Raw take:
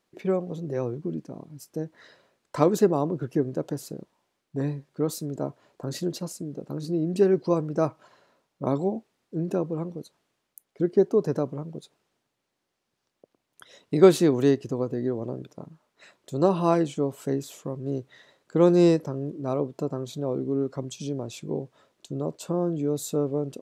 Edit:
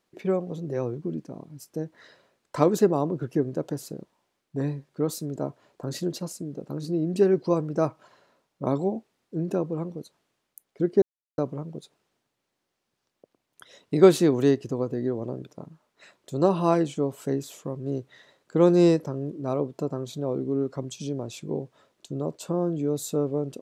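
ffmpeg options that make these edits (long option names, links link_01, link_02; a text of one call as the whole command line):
ffmpeg -i in.wav -filter_complex "[0:a]asplit=3[link_01][link_02][link_03];[link_01]atrim=end=11.02,asetpts=PTS-STARTPTS,afade=type=out:start_time=11.016:duration=0.004:curve=hsin[link_04];[link_02]atrim=start=11.02:end=11.38,asetpts=PTS-STARTPTS,volume=0[link_05];[link_03]atrim=start=11.38,asetpts=PTS-STARTPTS,afade=type=in:duration=0.004:curve=hsin[link_06];[link_04][link_05][link_06]concat=n=3:v=0:a=1" out.wav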